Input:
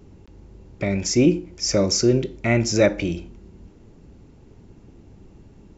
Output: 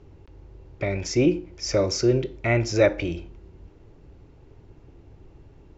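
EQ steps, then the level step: air absorption 120 m; bell 210 Hz -13 dB 0.55 oct; 0.0 dB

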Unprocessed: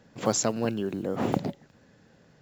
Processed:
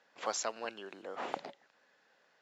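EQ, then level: HPF 830 Hz 12 dB/oct; air absorption 99 m; -2.5 dB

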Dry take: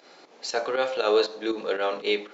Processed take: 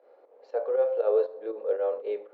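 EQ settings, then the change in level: ladder band-pass 550 Hz, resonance 70%; +3.0 dB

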